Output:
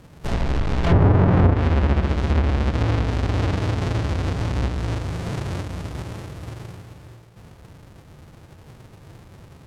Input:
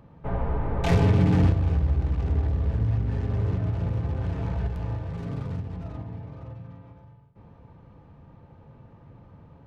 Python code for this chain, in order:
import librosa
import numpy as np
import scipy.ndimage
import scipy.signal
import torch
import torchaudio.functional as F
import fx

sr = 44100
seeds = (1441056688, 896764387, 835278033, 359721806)

y = fx.halfwave_hold(x, sr)
y = y + 10.0 ** (-14.0 / 20.0) * np.pad(y, (int(633 * sr / 1000.0), 0))[:len(y)]
y = fx.env_lowpass_down(y, sr, base_hz=1200.0, full_db=-11.5)